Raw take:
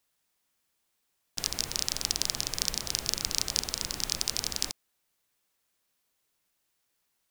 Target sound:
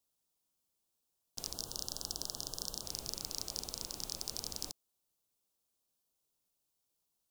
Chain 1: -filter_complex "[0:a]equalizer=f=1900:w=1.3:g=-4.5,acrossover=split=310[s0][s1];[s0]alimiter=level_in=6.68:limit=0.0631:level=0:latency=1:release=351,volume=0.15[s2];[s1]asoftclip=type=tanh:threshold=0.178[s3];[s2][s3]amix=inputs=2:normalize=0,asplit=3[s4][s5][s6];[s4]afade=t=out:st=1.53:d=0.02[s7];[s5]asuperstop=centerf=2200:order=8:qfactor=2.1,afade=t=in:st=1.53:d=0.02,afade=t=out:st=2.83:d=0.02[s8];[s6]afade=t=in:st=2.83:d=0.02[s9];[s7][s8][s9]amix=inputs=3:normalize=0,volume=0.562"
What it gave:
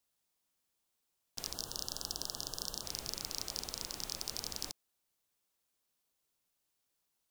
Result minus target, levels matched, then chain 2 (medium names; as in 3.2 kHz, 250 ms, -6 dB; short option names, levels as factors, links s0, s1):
2 kHz band +6.5 dB
-filter_complex "[0:a]equalizer=f=1900:w=1.3:g=-15,acrossover=split=310[s0][s1];[s0]alimiter=level_in=6.68:limit=0.0631:level=0:latency=1:release=351,volume=0.15[s2];[s1]asoftclip=type=tanh:threshold=0.178[s3];[s2][s3]amix=inputs=2:normalize=0,asplit=3[s4][s5][s6];[s4]afade=t=out:st=1.53:d=0.02[s7];[s5]asuperstop=centerf=2200:order=8:qfactor=2.1,afade=t=in:st=1.53:d=0.02,afade=t=out:st=2.83:d=0.02[s8];[s6]afade=t=in:st=2.83:d=0.02[s9];[s7][s8][s9]amix=inputs=3:normalize=0,volume=0.562"